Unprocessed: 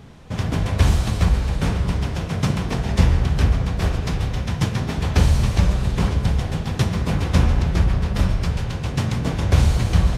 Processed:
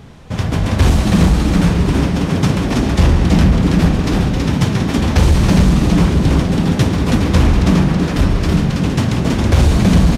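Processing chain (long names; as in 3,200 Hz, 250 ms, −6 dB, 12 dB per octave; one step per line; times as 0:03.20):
0:07.73–0:08.17: low-shelf EQ 100 Hz −11.5 dB
on a send: echo with shifted repeats 326 ms, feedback 34%, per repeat +110 Hz, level −3 dB
on the sum: hard clipping −9.5 dBFS, distortion −18 dB
level +5 dB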